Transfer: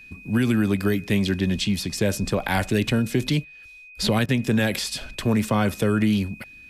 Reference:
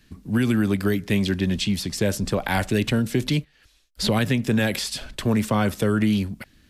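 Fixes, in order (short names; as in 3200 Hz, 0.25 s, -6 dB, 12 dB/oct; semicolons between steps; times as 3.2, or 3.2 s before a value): notch 2500 Hz, Q 30; interpolate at 4.26, 25 ms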